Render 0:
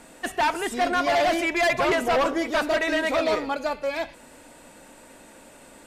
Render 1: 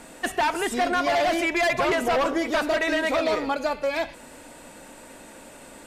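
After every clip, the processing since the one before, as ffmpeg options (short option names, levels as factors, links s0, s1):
-af "acompressor=threshold=0.0631:ratio=6,volume=1.5"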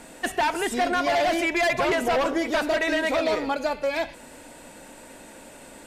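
-af "equalizer=f=1200:t=o:w=0.22:g=-4"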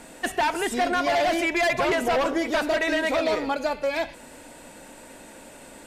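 -af anull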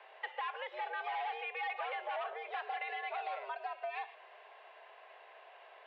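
-af "acompressor=threshold=0.0398:ratio=6,highpass=f=410:t=q:w=0.5412,highpass=f=410:t=q:w=1.307,lowpass=f=3200:t=q:w=0.5176,lowpass=f=3200:t=q:w=0.7071,lowpass=f=3200:t=q:w=1.932,afreqshift=130,volume=0.376"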